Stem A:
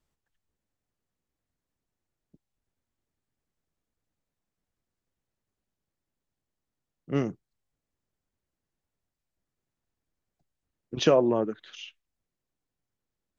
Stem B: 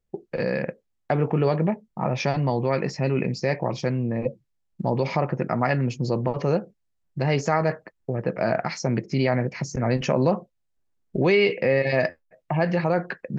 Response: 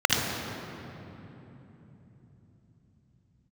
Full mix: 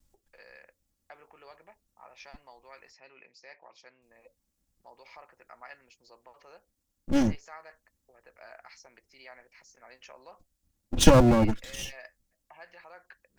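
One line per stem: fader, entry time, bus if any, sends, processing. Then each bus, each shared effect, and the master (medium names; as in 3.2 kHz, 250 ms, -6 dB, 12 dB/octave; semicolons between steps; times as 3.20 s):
+1.5 dB, 0.00 s, muted 2.93–4.02 s, no send, comb filter that takes the minimum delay 3.6 ms; tone controls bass +14 dB, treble +11 dB
-19.0 dB, 0.00 s, no send, high-pass 1 kHz 12 dB/octave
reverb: none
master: none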